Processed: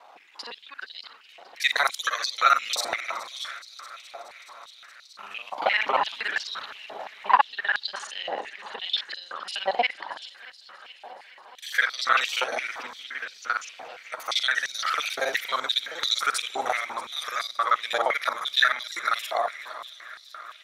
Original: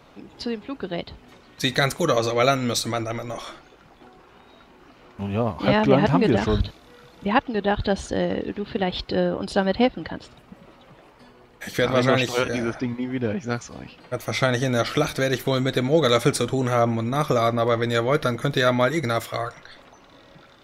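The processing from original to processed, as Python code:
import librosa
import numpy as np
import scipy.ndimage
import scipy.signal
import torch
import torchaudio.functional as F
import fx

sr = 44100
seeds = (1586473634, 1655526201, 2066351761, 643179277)

y = fx.local_reverse(x, sr, ms=39.0)
y = fx.echo_heads(y, sr, ms=211, heads='second and third', feedback_pct=69, wet_db=-18.5)
y = fx.filter_held_highpass(y, sr, hz=5.8, low_hz=780.0, high_hz=4400.0)
y = F.gain(torch.from_numpy(y), -3.0).numpy()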